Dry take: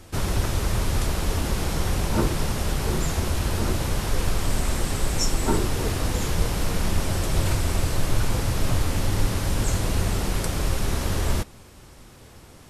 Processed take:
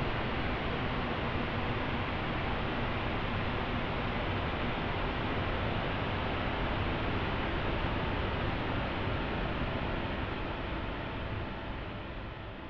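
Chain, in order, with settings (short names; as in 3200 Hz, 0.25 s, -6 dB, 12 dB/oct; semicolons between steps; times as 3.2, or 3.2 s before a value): mistuned SSB -300 Hz 220–3500 Hz; Paulstretch 11×, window 1.00 s, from 10.49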